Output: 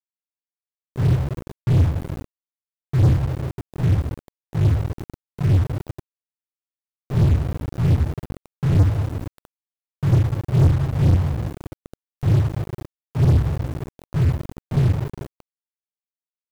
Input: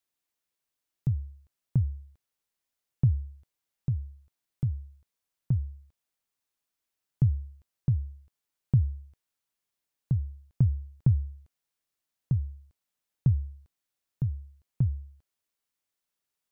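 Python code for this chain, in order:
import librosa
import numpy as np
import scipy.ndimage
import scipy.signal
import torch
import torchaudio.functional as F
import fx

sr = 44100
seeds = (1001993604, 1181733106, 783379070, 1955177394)

y = fx.phase_scramble(x, sr, seeds[0], window_ms=200)
y = fx.dereverb_blind(y, sr, rt60_s=1.6)
y = fx.rev_double_slope(y, sr, seeds[1], early_s=0.23, late_s=2.6, knee_db=-20, drr_db=-1.5)
y = fx.quant_dither(y, sr, seeds[2], bits=12, dither='none')
y = np.sign(y) * np.maximum(np.abs(y) - 10.0 ** (-39.5 / 20.0), 0.0)
y = fx.power_curve(y, sr, exponent=0.35)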